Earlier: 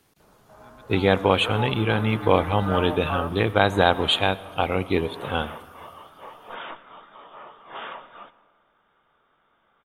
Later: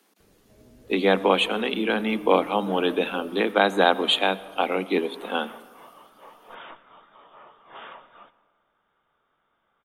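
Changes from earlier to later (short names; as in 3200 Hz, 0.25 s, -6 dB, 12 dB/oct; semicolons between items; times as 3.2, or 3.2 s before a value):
speech: add steep high-pass 190 Hz 96 dB/oct; first sound: add inverse Chebyshev low-pass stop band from 1000 Hz, stop band 40 dB; second sound -6.0 dB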